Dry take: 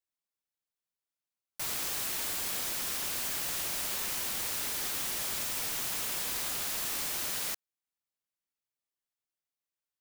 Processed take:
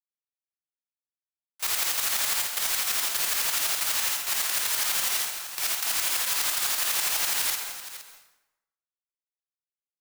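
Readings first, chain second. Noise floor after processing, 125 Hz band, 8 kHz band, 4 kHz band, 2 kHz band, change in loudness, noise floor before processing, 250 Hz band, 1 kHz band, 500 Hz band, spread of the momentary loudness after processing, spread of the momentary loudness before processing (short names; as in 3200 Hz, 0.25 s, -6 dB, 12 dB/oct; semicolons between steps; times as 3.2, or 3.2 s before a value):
under -85 dBFS, n/a, +7.5 dB, +8.5 dB, +8.5 dB, +7.0 dB, under -85 dBFS, -3.5 dB, +7.5 dB, +2.0 dB, 6 LU, 1 LU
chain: tracing distortion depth 0.023 ms; gate with hold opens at -24 dBFS; HPF 840 Hz 12 dB/oct; in parallel at -1 dB: limiter -30 dBFS, peak gain reduction 8 dB; on the sum: sample leveller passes 3; tremolo saw up 12 Hz, depth 70%; on a send: tapped delay 53/468 ms -7/-13 dB; on the sum: plate-style reverb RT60 0.91 s, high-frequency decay 0.75×, pre-delay 0.115 s, DRR 7 dB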